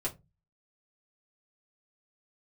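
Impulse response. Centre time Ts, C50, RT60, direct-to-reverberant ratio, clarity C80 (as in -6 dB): 12 ms, 18.0 dB, 0.20 s, -6.5 dB, 26.5 dB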